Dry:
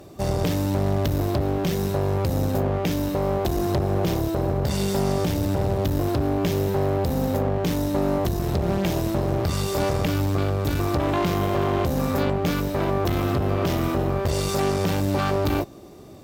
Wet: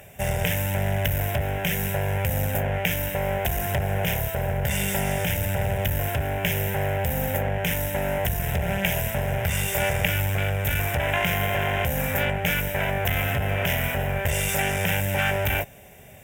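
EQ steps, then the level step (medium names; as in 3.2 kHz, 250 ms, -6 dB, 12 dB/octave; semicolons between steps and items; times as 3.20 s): high-order bell 2 kHz +9.5 dB; treble shelf 5.3 kHz +12 dB; static phaser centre 1.2 kHz, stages 6; 0.0 dB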